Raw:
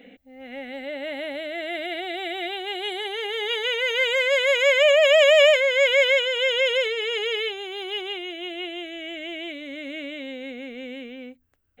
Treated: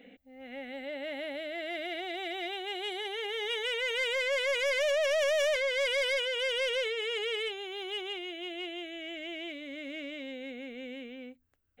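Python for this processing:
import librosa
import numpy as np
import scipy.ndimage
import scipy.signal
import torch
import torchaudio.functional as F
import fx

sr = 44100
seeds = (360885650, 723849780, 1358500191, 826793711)

y = 10.0 ** (-19.5 / 20.0) * np.tanh(x / 10.0 ** (-19.5 / 20.0))
y = y * librosa.db_to_amplitude(-6.0)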